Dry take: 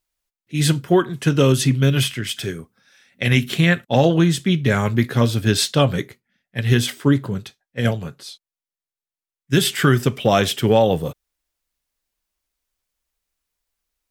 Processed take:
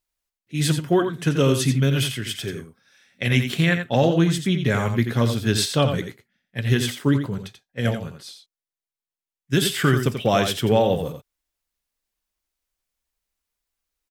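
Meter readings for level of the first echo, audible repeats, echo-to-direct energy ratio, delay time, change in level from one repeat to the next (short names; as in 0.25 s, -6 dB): -8.0 dB, 1, -8.0 dB, 86 ms, no steady repeat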